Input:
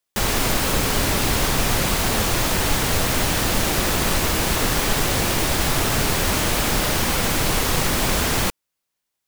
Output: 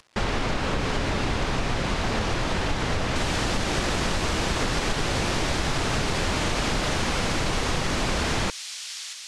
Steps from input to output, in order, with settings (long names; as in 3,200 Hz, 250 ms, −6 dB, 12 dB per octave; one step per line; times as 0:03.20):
variable-slope delta modulation 64 kbit/s
high-frequency loss of the air 82 metres
upward compression, threshold −33 dBFS
delay with a high-pass on its return 628 ms, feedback 68%, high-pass 4,700 Hz, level −3.5 dB
downward compressor, threshold −21 dBFS, peak gain reduction 6 dB
high-shelf EQ 5,200 Hz −4.5 dB, from 0:03.16 +4 dB